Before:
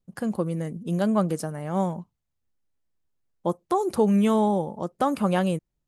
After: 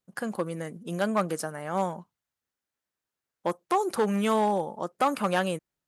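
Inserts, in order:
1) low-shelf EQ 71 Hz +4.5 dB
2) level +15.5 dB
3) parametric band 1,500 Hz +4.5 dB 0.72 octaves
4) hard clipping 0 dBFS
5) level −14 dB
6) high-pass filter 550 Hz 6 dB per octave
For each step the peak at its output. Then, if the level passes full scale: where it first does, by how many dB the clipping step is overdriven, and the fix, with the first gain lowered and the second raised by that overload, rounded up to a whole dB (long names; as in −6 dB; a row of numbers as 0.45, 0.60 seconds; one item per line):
−9.5, +6.0, +6.5, 0.0, −14.0, −12.0 dBFS
step 2, 6.5 dB
step 2 +8.5 dB, step 5 −7 dB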